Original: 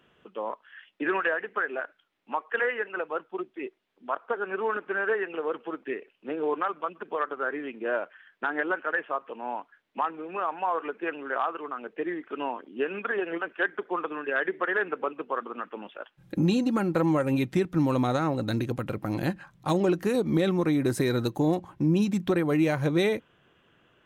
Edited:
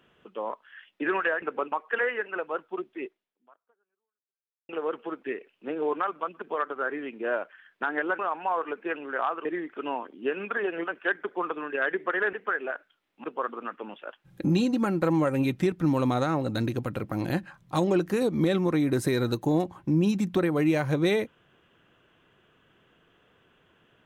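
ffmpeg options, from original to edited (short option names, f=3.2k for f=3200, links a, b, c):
-filter_complex "[0:a]asplit=8[a][b][c][d][e][f][g][h];[a]atrim=end=1.422[i];[b]atrim=start=14.868:end=15.172[j];[c]atrim=start=2.328:end=5.3,asetpts=PTS-STARTPTS,afade=t=out:st=1.332:d=1.64:c=exp[k];[d]atrim=start=5.3:end=8.802,asetpts=PTS-STARTPTS,afade=t=in:d=0.004:c=hsin[l];[e]atrim=start=10.358:end=11.622[m];[f]atrim=start=11.988:end=14.872[n];[g]atrim=start=1.418:end=2.332[o];[h]atrim=start=15.168[p];[i][j]acrossfade=d=0.004:c1=hsin:c2=hsin[q];[k][l]concat=n=2:v=0:a=1[r];[q][r]acrossfade=d=0.004:c1=hsin:c2=hsin[s];[s][m]acrossfade=d=0.004:c1=hsin:c2=hsin[t];[t][n]acrossfade=d=0.004:c1=hsin:c2=hsin[u];[u][o]acrossfade=d=0.004:c1=hsin:c2=hsin[v];[v][p]acrossfade=d=0.004:c1=hsin:c2=hsin"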